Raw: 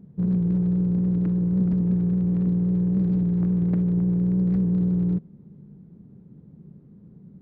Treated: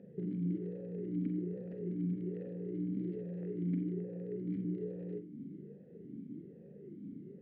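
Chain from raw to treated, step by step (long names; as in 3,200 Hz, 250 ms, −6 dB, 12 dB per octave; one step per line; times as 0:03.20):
downward compressor 8 to 1, threshold −33 dBFS, peak gain reduction 15 dB
on a send at −6 dB: convolution reverb, pre-delay 40 ms
on the sum: formant filter swept between two vowels e-i 1.2 Hz
level +14 dB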